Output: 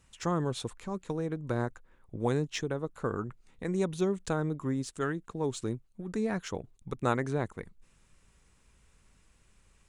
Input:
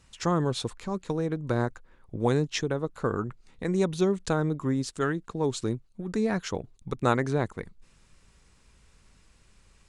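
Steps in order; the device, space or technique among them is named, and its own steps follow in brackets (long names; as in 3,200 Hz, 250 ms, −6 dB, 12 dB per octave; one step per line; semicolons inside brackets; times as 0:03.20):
exciter from parts (in parallel at −6 dB: high-pass filter 4,300 Hz 24 dB per octave + soft clipping −31.5 dBFS, distortion −14 dB)
on the sum: level −4.5 dB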